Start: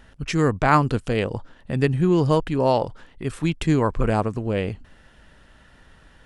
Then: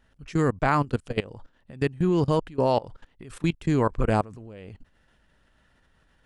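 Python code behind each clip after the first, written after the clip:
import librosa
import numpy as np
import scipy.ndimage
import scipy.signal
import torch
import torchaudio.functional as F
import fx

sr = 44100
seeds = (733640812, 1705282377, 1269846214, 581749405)

y = fx.level_steps(x, sr, step_db=21)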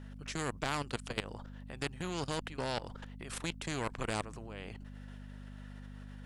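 y = fx.diode_clip(x, sr, knee_db=-15.0)
y = fx.add_hum(y, sr, base_hz=50, snr_db=12)
y = fx.spectral_comp(y, sr, ratio=2.0)
y = y * 10.0 ** (-6.0 / 20.0)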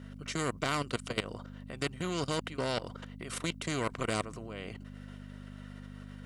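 y = fx.notch_comb(x, sr, f0_hz=840.0)
y = y * 10.0 ** (4.5 / 20.0)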